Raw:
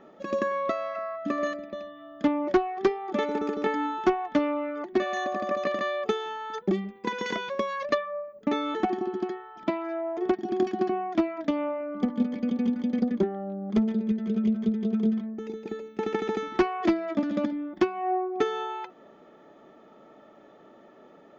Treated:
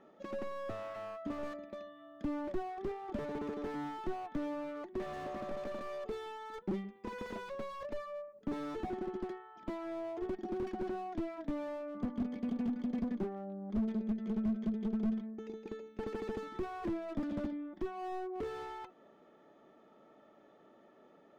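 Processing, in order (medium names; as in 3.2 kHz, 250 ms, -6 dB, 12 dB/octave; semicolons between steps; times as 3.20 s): Chebyshev shaper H 3 -16 dB, 4 -25 dB, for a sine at -12.5 dBFS; slew-rate limiter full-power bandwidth 11 Hz; trim -3.5 dB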